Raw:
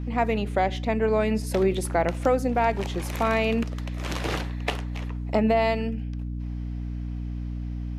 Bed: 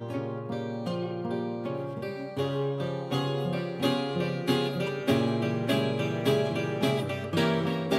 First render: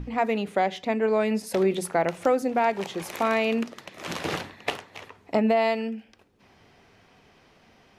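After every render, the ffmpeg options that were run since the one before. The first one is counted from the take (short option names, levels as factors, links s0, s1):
-af "bandreject=f=60:t=h:w=6,bandreject=f=120:t=h:w=6,bandreject=f=180:t=h:w=6,bandreject=f=240:t=h:w=6,bandreject=f=300:t=h:w=6"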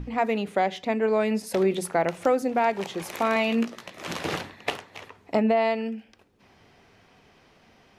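-filter_complex "[0:a]asettb=1/sr,asplit=3[s0][s1][s2];[s0]atrim=end=3.344[s3];[s1]atrim=start=3.34:end=3.92,asetpts=PTS-STARTPTS,afade=t=in:d=0.004:c=qsin,afade=t=out:st=0.576:d=0.004:c=qsin,asplit=2[s4][s5];[s5]adelay=17,volume=0.562[s6];[s4][s6]amix=inputs=2:normalize=0,atrim=end_sample=25578[s7];[s2]atrim=start=3.916[s8];[s3][s7]acrossfade=d=0.004:c1=hsin:c2=qsin[s9];[s9][s8]acrossfade=d=0.004:c1=qsin:c2=hsin,asettb=1/sr,asplit=3[s10][s11][s12];[s10]atrim=end=5.434[s13];[s11]atrim=start=5.43:end=5.86,asetpts=PTS-STARTPTS,afade=t=in:d=0.004:c=qsin,afade=t=out:st=0.426:d=0.004:c=qsin,lowpass=f=3600:p=1[s14];[s12]atrim=start=5.856[s15];[s13][s14]acrossfade=d=0.004:c1=hsin:c2=qsin[s16];[s16][s15]acrossfade=d=0.004:c1=qsin:c2=hsin"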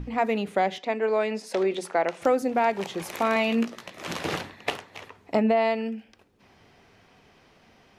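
-filter_complex "[0:a]asettb=1/sr,asplit=3[s0][s1][s2];[s0]atrim=end=0.784[s3];[s1]atrim=start=0.78:end=2.22,asetpts=PTS-STARTPTS,afade=t=in:d=0.004:c=qsin,afade=t=out:st=1.436:d=0.004:c=qsin,highpass=320,lowpass=7200[s4];[s2]atrim=start=2.216[s5];[s3][s4]acrossfade=d=0.004:c1=hsin:c2=qsin[s6];[s6][s5]acrossfade=d=0.004:c1=qsin:c2=hsin"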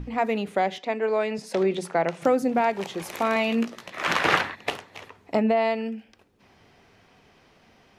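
-filter_complex "[0:a]asettb=1/sr,asplit=3[s0][s1][s2];[s0]atrim=end=1.384[s3];[s1]atrim=start=1.38:end=2.61,asetpts=PTS-STARTPTS,afade=t=in:d=0.004:c=qsin,afade=t=out:st=1.226:d=0.004:c=qsin,highpass=f=150:t=q:w=4.9[s4];[s2]atrim=start=2.606[s5];[s3][s4]acrossfade=d=0.004:c1=hsin:c2=qsin[s6];[s6][s5]acrossfade=d=0.004:c1=qsin:c2=hsin,asplit=3[s7][s8][s9];[s7]afade=t=out:st=3.92:d=0.02[s10];[s8]equalizer=f=1500:w=0.51:g=14,afade=t=in:st=3.92:d=0.02,afade=t=out:st=4.54:d=0.02[s11];[s9]afade=t=in:st=4.54:d=0.02[s12];[s10][s11][s12]amix=inputs=3:normalize=0"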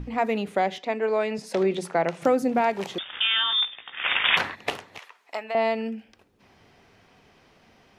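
-filter_complex "[0:a]asettb=1/sr,asplit=3[s0][s1][s2];[s0]atrim=end=2.984[s3];[s1]atrim=start=2.98:end=4.37,asetpts=PTS-STARTPTS,afade=t=in:d=0.004:c=qsin,afade=t=out:st=1.386:d=0.004:c=qsin,lowpass=f=3200:t=q:w=0.5098,lowpass=f=3200:t=q:w=0.6013,lowpass=f=3200:t=q:w=0.9,lowpass=f=3200:t=q:w=2.563,afreqshift=-3800[s4];[s2]atrim=start=4.366[s5];[s3][s4]acrossfade=d=0.004:c1=hsin:c2=qsin[s6];[s6][s5]acrossfade=d=0.004:c1=qsin:c2=hsin,asettb=1/sr,asplit=3[s7][s8][s9];[s7]atrim=end=4.984[s10];[s8]atrim=start=4.98:end=5.55,asetpts=PTS-STARTPTS,afade=t=in:d=0.004:c=qsin,afade=t=out:st=0.566:d=0.004:c=qsin,highpass=1000[s11];[s9]atrim=start=5.546[s12];[s10][s11]acrossfade=d=0.004:c1=hsin:c2=qsin[s13];[s13][s12]acrossfade=d=0.004:c1=qsin:c2=hsin"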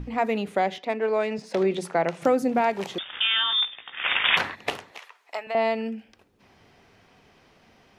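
-filter_complex "[0:a]asettb=1/sr,asplit=3[s0][s1][s2];[s0]atrim=end=0.744[s3];[s1]atrim=start=0.74:end=1.58,asetpts=PTS-STARTPTS,afade=t=in:d=0.004:c=qsin,afade=t=out:st=0.836:d=0.004:c=qsin,adynamicsmooth=sensitivity=7:basefreq=5600[s4];[s2]atrim=start=1.576[s5];[s3][s4]acrossfade=d=0.004:c1=hsin:c2=qsin[s6];[s6][s5]acrossfade=d=0.004:c1=qsin:c2=hsin,asettb=1/sr,asplit=3[s7][s8][s9];[s7]atrim=end=4.914[s10];[s8]atrim=start=4.91:end=5.47,asetpts=PTS-STARTPTS,afade=t=in:d=0.004:c=qsin,afade=t=out:st=0.556:d=0.004:c=qsin,highpass=340[s11];[s9]atrim=start=5.466[s12];[s10][s11]acrossfade=d=0.004:c1=hsin:c2=qsin[s13];[s13][s12]acrossfade=d=0.004:c1=qsin:c2=hsin"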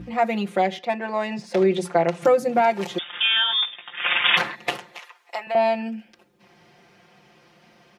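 -af "highpass=88,aecho=1:1:5.7:0.94"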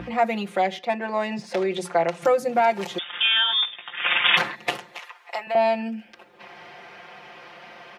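-filter_complex "[0:a]acrossover=split=480|3600[s0][s1][s2];[s0]alimiter=level_in=1.06:limit=0.0631:level=0:latency=1:release=269,volume=0.944[s3];[s1]acompressor=mode=upward:threshold=0.0282:ratio=2.5[s4];[s3][s4][s2]amix=inputs=3:normalize=0"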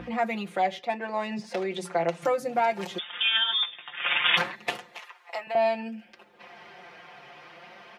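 -af "flanger=delay=3.9:depth=3.5:regen=56:speed=0.62:shape=triangular"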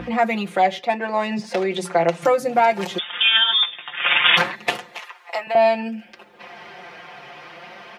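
-af "volume=2.51,alimiter=limit=0.794:level=0:latency=1"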